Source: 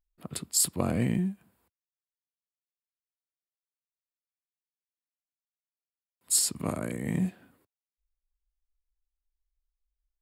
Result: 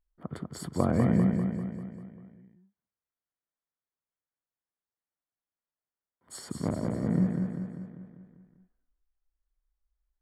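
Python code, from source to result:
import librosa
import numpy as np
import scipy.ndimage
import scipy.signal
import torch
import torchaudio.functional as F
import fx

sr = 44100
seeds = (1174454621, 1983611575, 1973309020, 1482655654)

y = fx.median_filter(x, sr, points=41, at=(6.59, 7.25))
y = scipy.signal.savgol_filter(y, 41, 4, mode='constant')
y = fx.echo_feedback(y, sr, ms=197, feedback_pct=55, wet_db=-5)
y = y * librosa.db_to_amplitude(2.5)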